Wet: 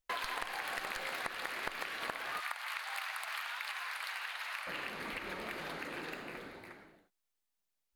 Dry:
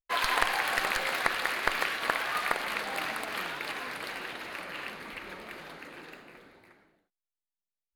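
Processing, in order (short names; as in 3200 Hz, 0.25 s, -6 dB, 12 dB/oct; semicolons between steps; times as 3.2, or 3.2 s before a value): 2.4–4.67 HPF 850 Hz 24 dB/oct; compressor 5:1, threshold -45 dBFS, peak gain reduction 22 dB; gain +6.5 dB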